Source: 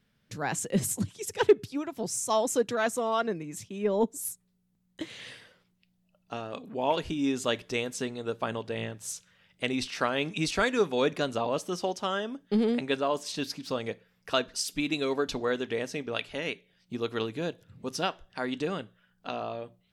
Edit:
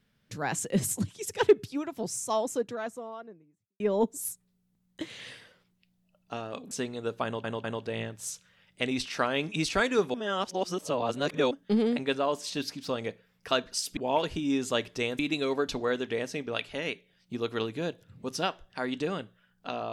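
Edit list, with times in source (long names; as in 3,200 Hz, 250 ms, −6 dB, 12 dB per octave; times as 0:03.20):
0:01.78–0:03.80: fade out and dull
0:06.71–0:07.93: move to 0:14.79
0:08.46: stutter 0.20 s, 3 plays
0:10.96–0:12.33: reverse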